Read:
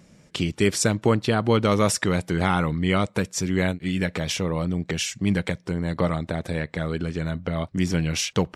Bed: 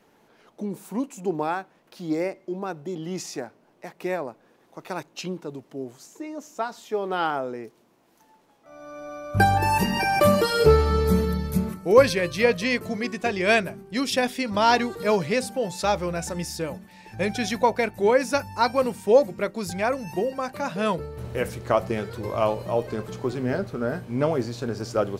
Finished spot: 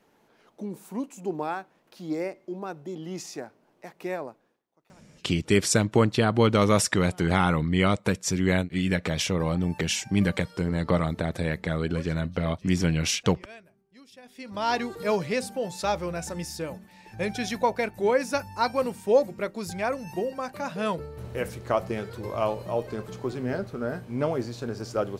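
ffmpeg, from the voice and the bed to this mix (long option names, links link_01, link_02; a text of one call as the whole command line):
ffmpeg -i stem1.wav -i stem2.wav -filter_complex "[0:a]adelay=4900,volume=-0.5dB[link_01];[1:a]volume=19.5dB,afade=type=out:start_time=4.25:duration=0.38:silence=0.0707946,afade=type=in:start_time=14.24:duration=0.71:silence=0.0668344[link_02];[link_01][link_02]amix=inputs=2:normalize=0" out.wav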